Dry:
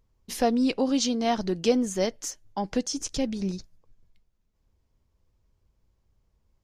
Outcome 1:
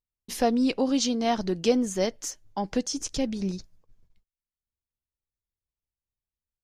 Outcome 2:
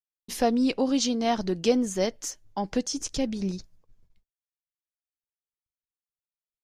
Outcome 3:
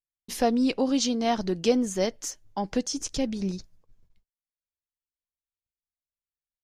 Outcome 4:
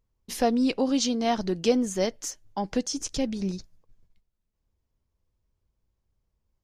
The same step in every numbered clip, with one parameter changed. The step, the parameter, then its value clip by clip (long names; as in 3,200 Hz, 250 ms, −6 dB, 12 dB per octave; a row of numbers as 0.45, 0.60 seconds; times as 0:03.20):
noise gate, range: −27, −53, −40, −7 decibels